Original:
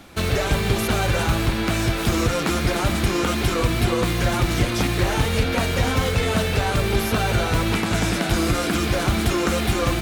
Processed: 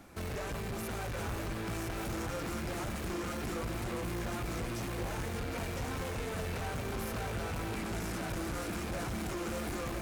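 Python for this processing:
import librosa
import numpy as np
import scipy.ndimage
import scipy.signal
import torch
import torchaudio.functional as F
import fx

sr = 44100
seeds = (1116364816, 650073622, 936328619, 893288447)

y = fx.peak_eq(x, sr, hz=3500.0, db=-8.5, octaves=0.93)
y = 10.0 ** (-27.0 / 20.0) * np.tanh(y / 10.0 ** (-27.0 / 20.0))
y = y + 10.0 ** (-6.0 / 20.0) * np.pad(y, (int(1007 * sr / 1000.0), 0))[:len(y)]
y = F.gain(torch.from_numpy(y), -8.5).numpy()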